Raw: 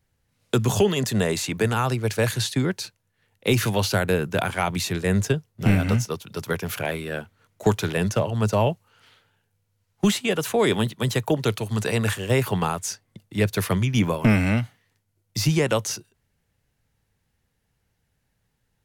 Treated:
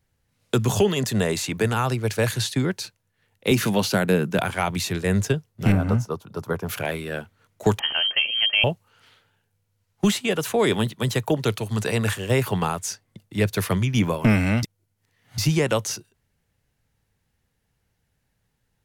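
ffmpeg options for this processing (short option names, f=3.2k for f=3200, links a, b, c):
-filter_complex "[0:a]asettb=1/sr,asplit=3[a][b][c];[a]atrim=end=3.514[d];[b]atrim=start=3.51:end=4.39,asetpts=PTS-STARTPTS,afade=t=in:d=0.004:c=qsin,afade=t=out:st=0.876:d=0.004:c=qsin,highpass=f=180:t=q:w=1.9[e];[c]atrim=start=4.386[f];[d][e]acrossfade=d=0.004:c1=hsin:c2=qsin[g];[g][f]acrossfade=d=0.004:c1=qsin:c2=hsin,asettb=1/sr,asplit=3[h][i][j];[h]atrim=end=5.724[k];[i]atrim=start=5.72:end=6.69,asetpts=PTS-STARTPTS,afade=t=in:d=0.004:c=qsin,afade=t=out:st=0.966:d=0.004:c=qsin,highshelf=f=1.6k:t=q:w=1.5:g=-9.5[l];[j]atrim=start=6.686[m];[k][l]acrossfade=d=0.004:c1=hsin:c2=qsin[n];[n][m]acrossfade=d=0.004:c1=qsin:c2=hsin,asettb=1/sr,asplit=3[o][p][q];[o]atrim=end=7.794[r];[p]atrim=start=7.79:end=8.64,asetpts=PTS-STARTPTS,afade=t=in:d=0.004:c=qsin,afade=t=out:st=0.846:d=0.004:c=qsin,lowpass=f=2.8k:t=q:w=0.5098,lowpass=f=2.8k:t=q:w=0.6013,lowpass=f=2.8k:t=q:w=0.9,lowpass=f=2.8k:t=q:w=2.563,afreqshift=-3300[s];[q]atrim=start=8.636[t];[r][s]acrossfade=d=0.004:c1=hsin:c2=qsin[u];[u][t]acrossfade=d=0.004:c1=qsin:c2=hsin,asplit=3[v][w][x];[v]atrim=end=14.632[y];[w]atrim=start=14.628:end=15.382,asetpts=PTS-STARTPTS,areverse[z];[x]atrim=start=15.378[aa];[y][z]acrossfade=d=0.004:c1=hsin:c2=hsin[ab];[ab][aa]acrossfade=d=0.004:c1=hsin:c2=hsin"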